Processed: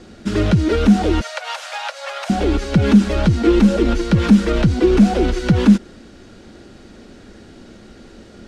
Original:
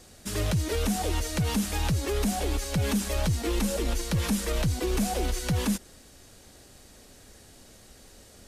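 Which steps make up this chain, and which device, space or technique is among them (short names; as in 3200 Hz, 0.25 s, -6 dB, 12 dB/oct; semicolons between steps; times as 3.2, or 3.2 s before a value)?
1.21–2.3 steep high-pass 540 Hz 96 dB/oct; inside a cardboard box (LPF 4000 Hz 12 dB/oct; small resonant body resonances 220/330/1400 Hz, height 10 dB, ringing for 35 ms); gain +8 dB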